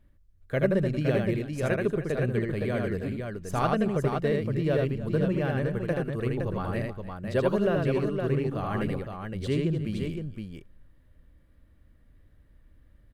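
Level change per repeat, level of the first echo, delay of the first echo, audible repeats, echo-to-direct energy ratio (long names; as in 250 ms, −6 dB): repeats not evenly spaced, −3.0 dB, 79 ms, 3, −1.0 dB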